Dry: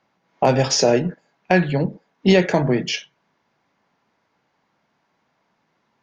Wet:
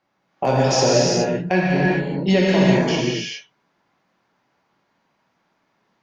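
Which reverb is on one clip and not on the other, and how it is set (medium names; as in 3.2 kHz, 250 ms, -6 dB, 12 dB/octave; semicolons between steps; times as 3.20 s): gated-style reverb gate 450 ms flat, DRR -5.5 dB; trim -5.5 dB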